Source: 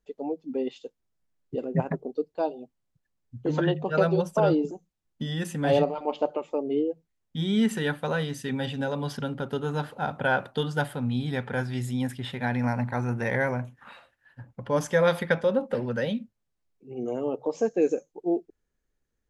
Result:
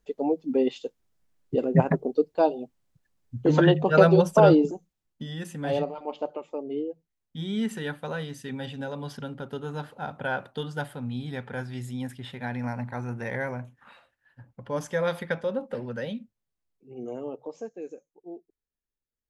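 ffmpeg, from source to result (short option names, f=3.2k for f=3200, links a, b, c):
-af "volume=6dB,afade=t=out:st=4.47:d=0.77:silence=0.281838,afade=t=out:st=17.14:d=0.64:silence=0.298538"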